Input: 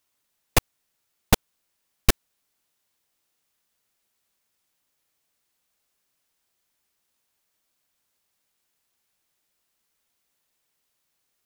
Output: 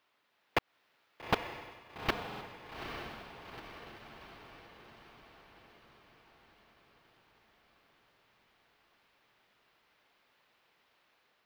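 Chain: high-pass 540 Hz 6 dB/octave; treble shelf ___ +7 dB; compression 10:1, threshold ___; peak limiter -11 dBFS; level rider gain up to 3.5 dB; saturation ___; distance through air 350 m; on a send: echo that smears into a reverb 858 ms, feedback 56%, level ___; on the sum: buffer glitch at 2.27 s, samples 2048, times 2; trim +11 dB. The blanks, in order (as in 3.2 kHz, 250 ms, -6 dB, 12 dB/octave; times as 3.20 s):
11 kHz, -22 dBFS, -25.5 dBFS, -6 dB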